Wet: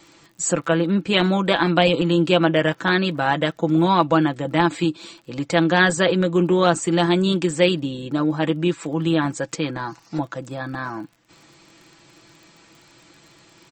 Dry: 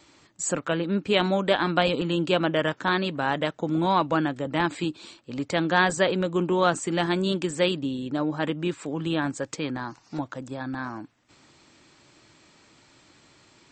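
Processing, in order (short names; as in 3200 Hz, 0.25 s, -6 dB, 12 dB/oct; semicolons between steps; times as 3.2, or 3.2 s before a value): comb 6 ms, depth 54%; crackle 33/s -44 dBFS; gain +4 dB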